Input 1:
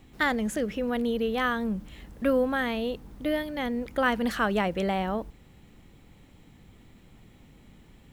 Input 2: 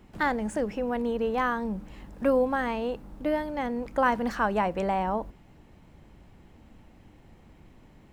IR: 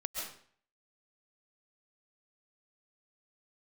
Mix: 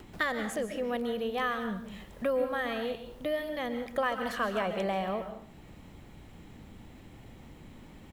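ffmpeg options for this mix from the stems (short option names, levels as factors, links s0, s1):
-filter_complex "[0:a]highpass=83,volume=0.891,asplit=2[s0][s1];[s1]volume=0.299[s2];[1:a]acompressor=mode=upward:threshold=0.0398:ratio=2.5,adelay=1.8,volume=0.282,asplit=2[s3][s4];[s4]apad=whole_len=358276[s5];[s0][s5]sidechaincompress=threshold=0.00794:ratio=8:attack=26:release=759[s6];[2:a]atrim=start_sample=2205[s7];[s2][s7]afir=irnorm=-1:irlink=0[s8];[s6][s3][s8]amix=inputs=3:normalize=0"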